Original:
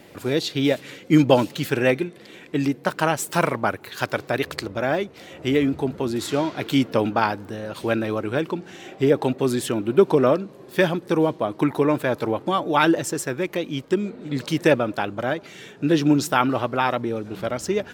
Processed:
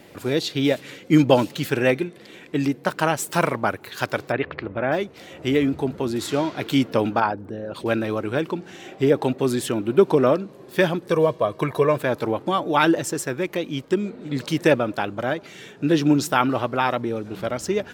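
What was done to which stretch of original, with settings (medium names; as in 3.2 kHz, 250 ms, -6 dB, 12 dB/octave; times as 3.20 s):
4.32–4.92 s: low-pass 2.7 kHz 24 dB/octave
7.20–7.86 s: resonances exaggerated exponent 1.5
11.09–11.98 s: comb 1.8 ms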